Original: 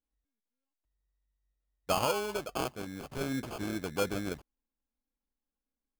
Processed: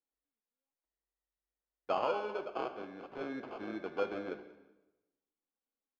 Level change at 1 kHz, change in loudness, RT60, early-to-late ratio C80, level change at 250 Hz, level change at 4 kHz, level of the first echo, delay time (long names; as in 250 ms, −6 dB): −2.5 dB, −4.0 dB, 1.0 s, 12.5 dB, −6.5 dB, −11.5 dB, −21.5 dB, 187 ms